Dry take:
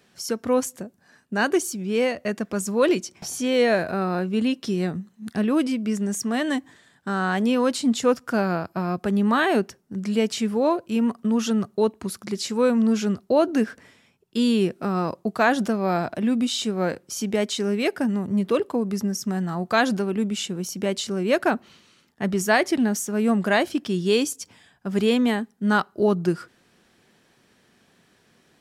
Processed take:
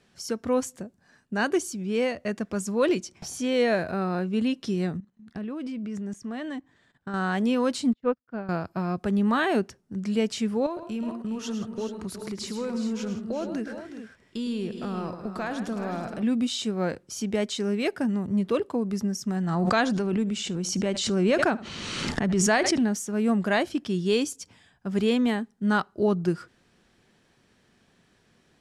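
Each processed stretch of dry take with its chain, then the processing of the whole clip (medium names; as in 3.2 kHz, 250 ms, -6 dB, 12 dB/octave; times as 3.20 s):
4.97–7.14 s: treble shelf 5.8 kHz -12 dB + level held to a coarse grid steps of 15 dB
7.93–8.49 s: distance through air 350 m + upward expansion 2.5:1, over -41 dBFS
10.66–16.22 s: compression 2.5:1, threshold -28 dBFS + multi-tap echo 107/163/368/421 ms -9.5/-14.5/-11.5/-11 dB
19.36–22.82 s: low-pass 9.5 kHz 24 dB/octave + delay 76 ms -21 dB + swell ahead of each attack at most 26 dB/s
whole clip: low-pass 10 kHz 12 dB/octave; bass shelf 86 Hz +11.5 dB; trim -4 dB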